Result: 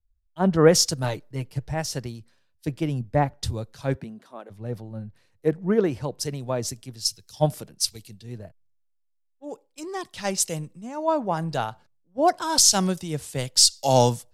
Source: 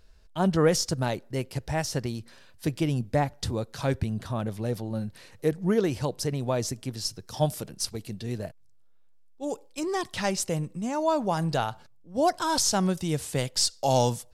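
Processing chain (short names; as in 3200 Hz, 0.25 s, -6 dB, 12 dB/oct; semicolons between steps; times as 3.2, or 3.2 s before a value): 1.03–1.74 comb 6.6 ms, depth 58%; 3.94–4.49 HPF 130 Hz -> 360 Hz 24 dB/oct; three-band expander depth 100%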